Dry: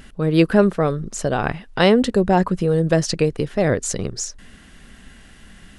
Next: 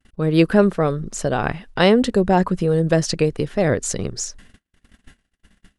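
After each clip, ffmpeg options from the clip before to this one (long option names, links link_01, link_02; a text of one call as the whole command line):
ffmpeg -i in.wav -af "agate=range=-44dB:threshold=-40dB:ratio=16:detection=peak" out.wav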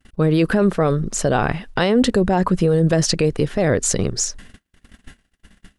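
ffmpeg -i in.wav -af "alimiter=limit=-13.5dB:level=0:latency=1:release=28,volume=5.5dB" out.wav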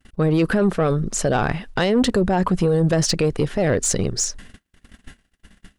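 ffmpeg -i in.wav -af "asoftclip=type=tanh:threshold=-10dB" out.wav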